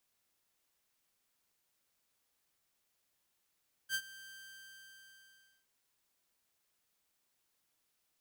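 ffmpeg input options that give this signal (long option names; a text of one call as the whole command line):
ffmpeg -f lavfi -i "aevalsrc='0.0376*(2*mod(1570*t,1)-1)':duration=1.77:sample_rate=44100,afade=type=in:duration=0.057,afade=type=out:start_time=0.057:duration=0.062:silence=0.112,afade=type=out:start_time=0.42:duration=1.35" out.wav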